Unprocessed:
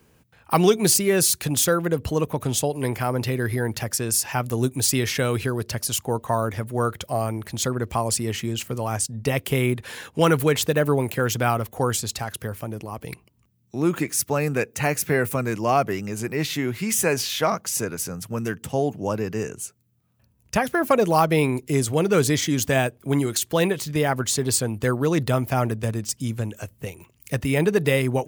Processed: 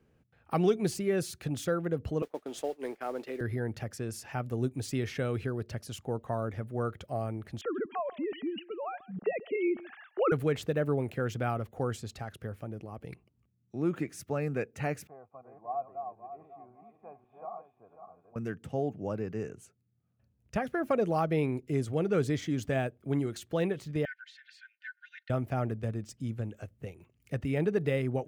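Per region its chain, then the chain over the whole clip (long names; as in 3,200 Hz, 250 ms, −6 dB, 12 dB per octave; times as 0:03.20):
0:02.22–0:03.41: noise gate −29 dBFS, range −19 dB + high-pass filter 290 Hz 24 dB per octave + noise that follows the level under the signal 16 dB
0:07.61–0:10.32: three sine waves on the formant tracks + single-tap delay 138 ms −19 dB
0:15.07–0:18.36: feedback delay that plays each chunk backwards 272 ms, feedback 49%, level −4.5 dB + formant resonators in series a
0:24.05–0:25.30: linear-phase brick-wall high-pass 1,400 Hz + high-frequency loss of the air 320 metres + comb filter 3.3 ms, depth 79%
whole clip: low-pass filter 1,400 Hz 6 dB per octave; parametric band 980 Hz −9 dB 0.26 octaves; level −8 dB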